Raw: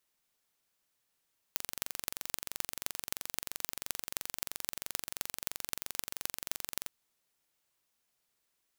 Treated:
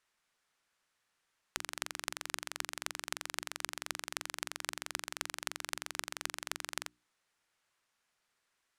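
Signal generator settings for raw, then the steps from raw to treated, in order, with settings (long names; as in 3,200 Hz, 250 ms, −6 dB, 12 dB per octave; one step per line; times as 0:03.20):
impulse train 23 per second, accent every 6, −4 dBFS 5.34 s
Bessel low-pass filter 8,900 Hz, order 4
parametric band 1,500 Hz +7.5 dB 1.6 octaves
mains-hum notches 60/120/180/240/300/360 Hz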